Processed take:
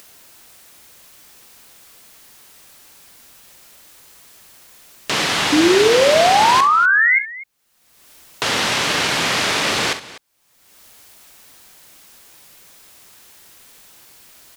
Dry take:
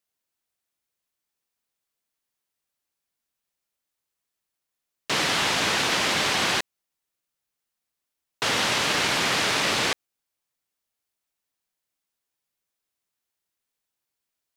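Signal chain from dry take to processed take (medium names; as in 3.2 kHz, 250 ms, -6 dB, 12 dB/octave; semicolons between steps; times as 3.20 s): painted sound rise, 5.52–7.19 s, 290–2200 Hz -18 dBFS; upward compressor, threshold -25 dBFS; multi-tap echo 42/66/248 ms -12/-14/-18 dB; trim +4 dB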